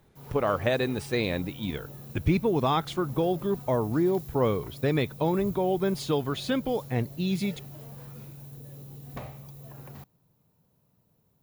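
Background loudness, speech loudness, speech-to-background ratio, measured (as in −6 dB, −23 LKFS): −43.5 LKFS, −28.0 LKFS, 15.5 dB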